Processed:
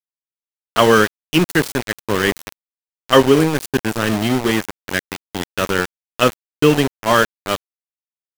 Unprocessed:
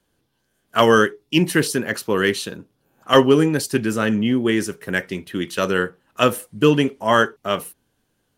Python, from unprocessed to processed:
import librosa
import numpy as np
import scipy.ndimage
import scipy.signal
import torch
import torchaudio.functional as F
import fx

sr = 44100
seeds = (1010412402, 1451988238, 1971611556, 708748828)

y = np.where(np.abs(x) >= 10.0 ** (-18.5 / 20.0), x, 0.0)
y = y * 10.0 ** (2.0 / 20.0)